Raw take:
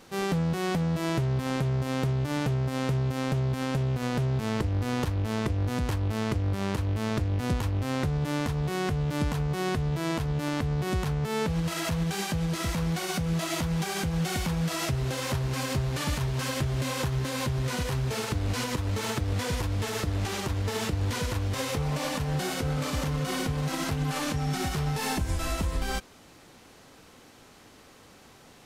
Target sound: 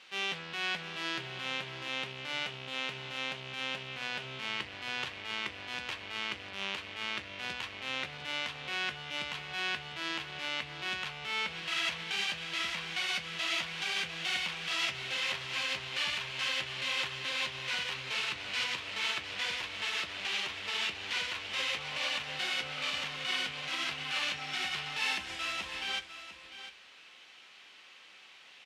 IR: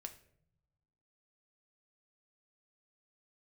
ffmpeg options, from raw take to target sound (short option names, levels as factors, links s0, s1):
-filter_complex "[0:a]bandpass=f=2800:t=q:w=2.2:csg=0,asplit=2[s0][s1];[s1]adelay=15,volume=0.251[s2];[s0][s2]amix=inputs=2:normalize=0,aecho=1:1:700:0.251,asplit=2[s3][s4];[1:a]atrim=start_sample=2205,highshelf=f=8800:g=-11[s5];[s4][s5]afir=irnorm=-1:irlink=0,volume=2.51[s6];[s3][s6]amix=inputs=2:normalize=0"